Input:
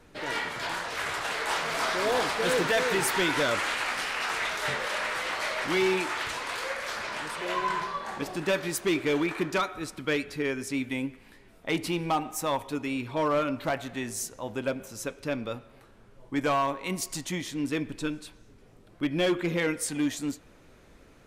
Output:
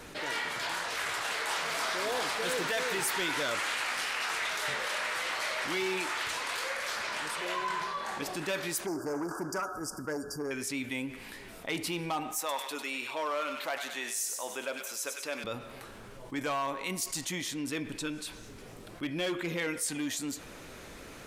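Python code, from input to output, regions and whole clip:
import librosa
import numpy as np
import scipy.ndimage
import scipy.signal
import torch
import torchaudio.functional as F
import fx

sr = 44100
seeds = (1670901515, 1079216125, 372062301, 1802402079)

y = fx.chain(x, sr, fx.brickwall_bandstop(low_hz=1700.0, high_hz=4600.0),
    fx.transformer_sat(knee_hz=450.0), at=(8.86, 10.51))
y = fx.chain(y, sr, fx.highpass(hz=460.0, slope=12),
    fx.echo_wet_highpass(ms=98, feedback_pct=44, hz=1700.0, wet_db=-7.0), at=(12.39, 15.44))
y = fx.tilt_eq(y, sr, slope=1.5)
y = fx.env_flatten(y, sr, amount_pct=50)
y = y * 10.0 ** (-7.5 / 20.0)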